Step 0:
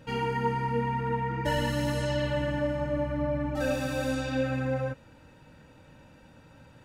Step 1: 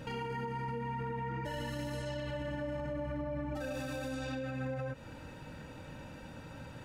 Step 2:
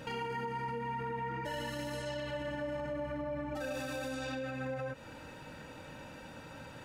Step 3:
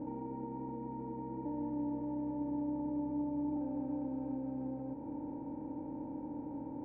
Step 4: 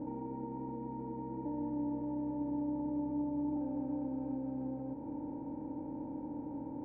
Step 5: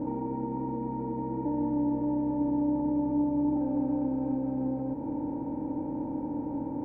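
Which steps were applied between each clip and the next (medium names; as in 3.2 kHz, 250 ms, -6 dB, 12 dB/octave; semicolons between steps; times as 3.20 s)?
compression, threshold -35 dBFS, peak gain reduction 12 dB; peak limiter -36.5 dBFS, peak gain reduction 11 dB; trim +6 dB
bass shelf 230 Hz -9 dB; trim +2.5 dB
spectral levelling over time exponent 0.4; cascade formant filter u; trim +5 dB
distance through air 210 m; trim +1 dB
filtered feedback delay 342 ms, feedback 51%, low-pass 1 kHz, level -21 dB; trim +8.5 dB; Opus 48 kbps 48 kHz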